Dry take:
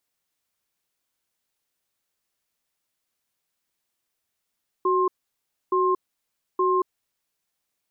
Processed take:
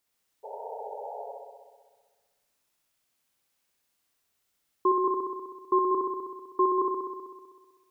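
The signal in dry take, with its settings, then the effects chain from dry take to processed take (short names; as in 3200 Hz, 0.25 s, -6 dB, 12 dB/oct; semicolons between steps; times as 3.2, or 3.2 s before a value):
cadence 371 Hz, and 1060 Hz, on 0.23 s, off 0.64 s, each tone -21 dBFS 2.01 s
painted sound noise, 0.43–1.32, 400–950 Hz -42 dBFS; on a send: flutter echo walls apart 10.9 m, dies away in 1.5 s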